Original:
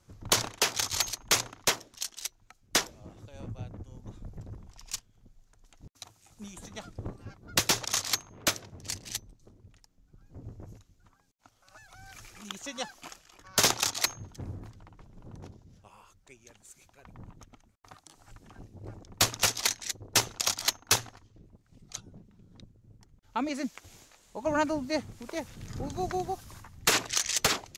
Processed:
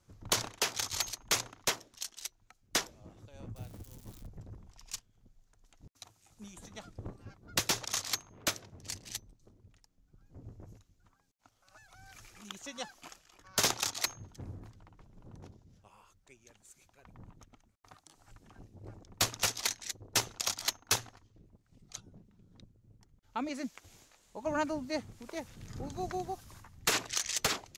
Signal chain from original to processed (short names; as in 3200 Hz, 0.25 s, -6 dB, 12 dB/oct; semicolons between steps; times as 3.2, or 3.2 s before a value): 3.56–4.27 switching spikes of -37 dBFS; gain -5 dB